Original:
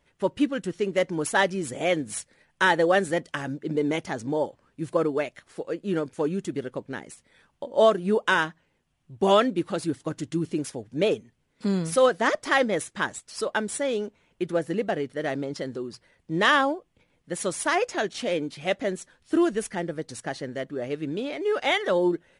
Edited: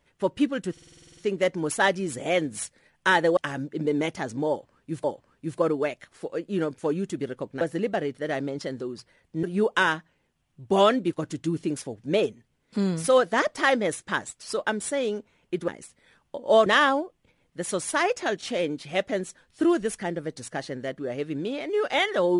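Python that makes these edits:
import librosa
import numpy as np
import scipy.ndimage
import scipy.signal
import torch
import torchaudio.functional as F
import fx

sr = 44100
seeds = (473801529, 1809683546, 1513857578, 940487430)

y = fx.edit(x, sr, fx.stutter(start_s=0.72, slice_s=0.05, count=10),
    fx.cut(start_s=2.92, length_s=0.35),
    fx.repeat(start_s=4.39, length_s=0.55, count=2),
    fx.swap(start_s=6.96, length_s=0.98, other_s=14.56, other_length_s=1.82),
    fx.cut(start_s=9.64, length_s=0.37), tone=tone)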